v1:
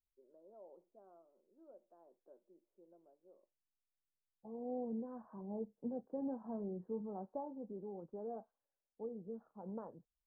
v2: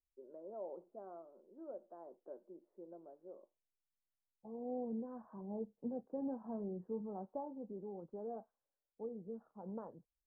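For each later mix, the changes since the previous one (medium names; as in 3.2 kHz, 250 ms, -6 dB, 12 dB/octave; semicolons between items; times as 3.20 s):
first voice +11.5 dB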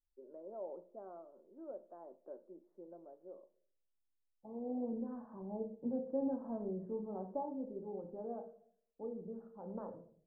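reverb: on, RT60 0.55 s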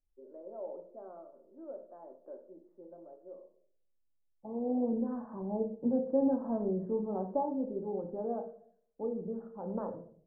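first voice: send +11.0 dB; second voice +8.0 dB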